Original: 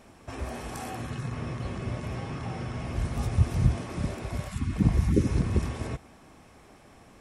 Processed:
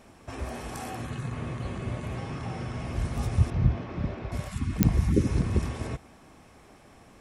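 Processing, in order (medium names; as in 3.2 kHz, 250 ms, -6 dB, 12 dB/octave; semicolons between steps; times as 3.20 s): 1.05–2.18 s: band-stop 5.4 kHz, Q 7.1; 3.50–4.32 s: distance through air 220 m; clicks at 4.83 s, -4 dBFS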